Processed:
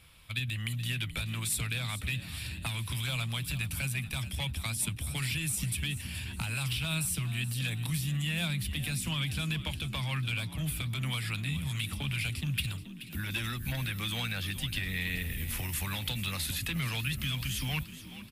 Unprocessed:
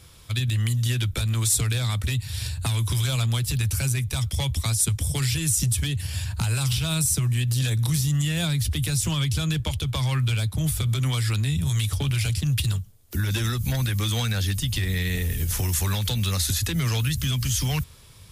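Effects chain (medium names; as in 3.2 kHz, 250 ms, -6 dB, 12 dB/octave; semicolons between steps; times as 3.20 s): fifteen-band graphic EQ 100 Hz -7 dB, 400 Hz -8 dB, 2.5 kHz +8 dB, 6.3 kHz -10 dB; on a send: frequency-shifting echo 428 ms, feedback 49%, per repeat +49 Hz, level -14 dB; on the sum: trim -7 dB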